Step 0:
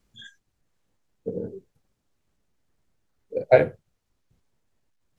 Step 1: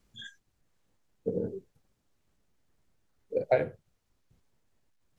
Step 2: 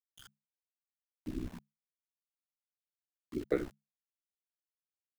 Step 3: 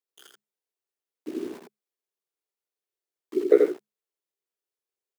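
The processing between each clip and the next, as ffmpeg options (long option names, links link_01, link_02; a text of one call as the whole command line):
ffmpeg -i in.wav -af "acompressor=threshold=-24dB:ratio=3" out.wav
ffmpeg -i in.wav -af "aeval=exprs='val(0)*gte(abs(val(0)),0.00944)':channel_layout=same,afreqshift=-180,aeval=exprs='val(0)*sin(2*PI*32*n/s)':channel_layout=same,volume=-4dB" out.wav
ffmpeg -i in.wav -filter_complex "[0:a]asplit=2[link_01][link_02];[link_02]acrusher=bits=7:mix=0:aa=0.000001,volume=-5dB[link_03];[link_01][link_03]amix=inputs=2:normalize=0,highpass=frequency=400:width_type=q:width=4.9,aecho=1:1:84:0.668" out.wav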